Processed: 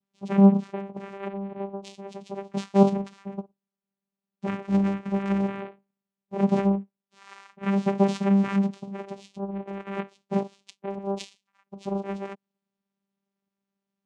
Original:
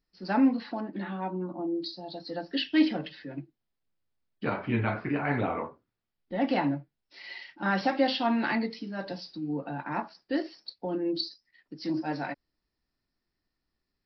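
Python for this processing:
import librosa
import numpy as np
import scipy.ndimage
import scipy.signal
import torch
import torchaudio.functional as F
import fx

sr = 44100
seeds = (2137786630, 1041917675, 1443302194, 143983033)

y = fx.env_flanger(x, sr, rest_ms=8.7, full_db=-22.5)
y = fx.vocoder(y, sr, bands=4, carrier='saw', carrier_hz=197.0)
y = y * 10.0 ** (6.5 / 20.0)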